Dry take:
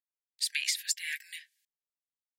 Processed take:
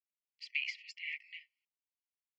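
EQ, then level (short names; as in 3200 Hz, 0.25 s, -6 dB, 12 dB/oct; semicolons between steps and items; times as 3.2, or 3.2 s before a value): brick-wall FIR high-pass 1800 Hz; LPF 3300 Hz 24 dB/oct; fixed phaser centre 2500 Hz, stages 8; -1.0 dB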